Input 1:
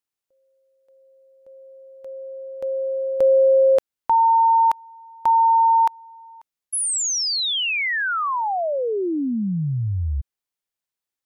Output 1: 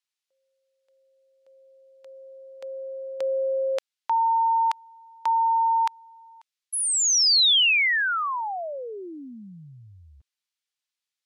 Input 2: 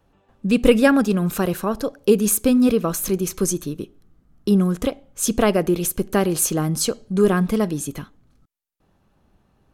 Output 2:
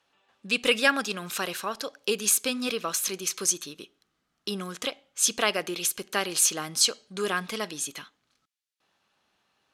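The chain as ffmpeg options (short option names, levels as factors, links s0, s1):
-af "bandpass=f=3800:t=q:w=0.82:csg=0,volume=1.78"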